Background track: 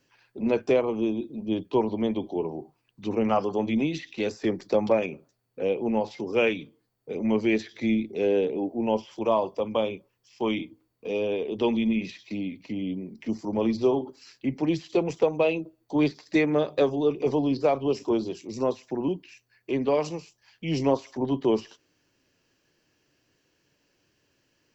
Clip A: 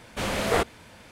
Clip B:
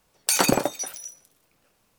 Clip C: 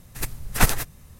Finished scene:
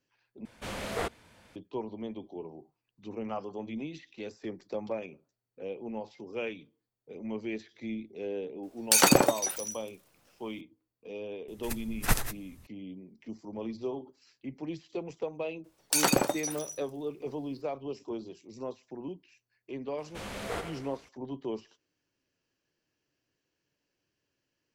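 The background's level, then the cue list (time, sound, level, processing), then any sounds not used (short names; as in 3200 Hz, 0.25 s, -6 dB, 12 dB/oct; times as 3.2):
background track -12.5 dB
0.45 replace with A -9.5 dB
8.63 add B
11.48 add C -8 dB
15.64 add B -4.5 dB
19.98 add A -12.5 dB + feedback echo 88 ms, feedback 54%, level -8 dB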